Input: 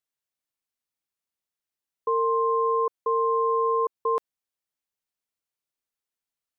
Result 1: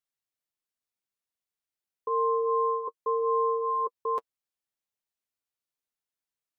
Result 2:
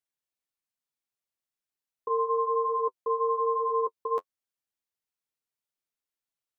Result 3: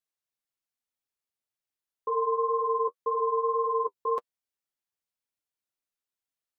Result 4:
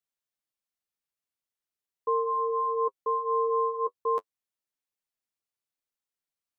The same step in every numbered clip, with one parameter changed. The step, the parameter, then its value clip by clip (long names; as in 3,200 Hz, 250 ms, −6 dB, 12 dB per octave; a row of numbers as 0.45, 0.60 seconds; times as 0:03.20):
flanger, speed: 0.25, 1.1, 1.9, 0.4 Hertz